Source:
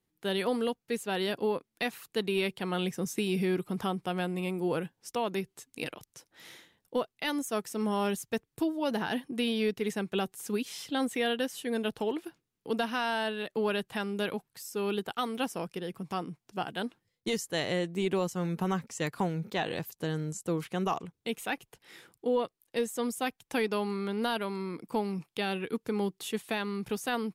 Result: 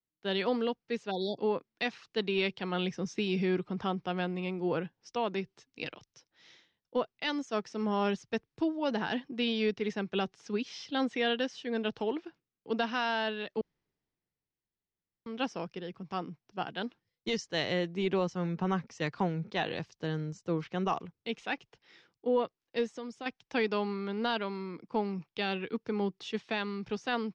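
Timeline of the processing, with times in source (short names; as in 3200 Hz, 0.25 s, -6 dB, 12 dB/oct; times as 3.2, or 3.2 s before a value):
1.11–1.39 spectral delete 930–3300 Hz
13.61–15.26 room tone
22.85–23.26 compressor 5:1, threshold -33 dBFS
whole clip: Chebyshev low-pass 5700 Hz, order 4; three-band expander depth 40%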